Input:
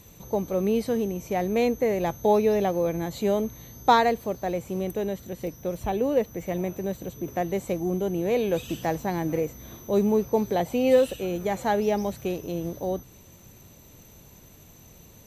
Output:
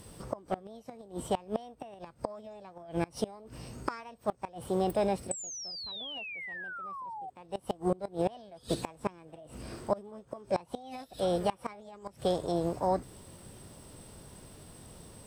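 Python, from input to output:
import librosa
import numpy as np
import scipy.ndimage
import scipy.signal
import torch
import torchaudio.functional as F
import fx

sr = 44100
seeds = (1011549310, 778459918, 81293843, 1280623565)

y = fx.formant_shift(x, sr, semitones=5)
y = fx.spec_paint(y, sr, seeds[0], shape='fall', start_s=5.31, length_s=1.99, low_hz=730.0, high_hz=8100.0, level_db=-16.0)
y = fx.gate_flip(y, sr, shuts_db=-17.0, range_db=-25)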